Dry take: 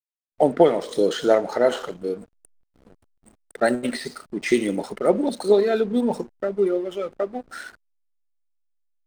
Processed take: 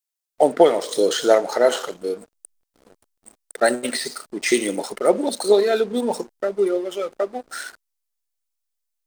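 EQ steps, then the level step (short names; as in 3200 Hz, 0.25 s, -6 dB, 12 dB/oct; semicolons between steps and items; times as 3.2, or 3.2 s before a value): tone controls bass -12 dB, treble +8 dB; +3.0 dB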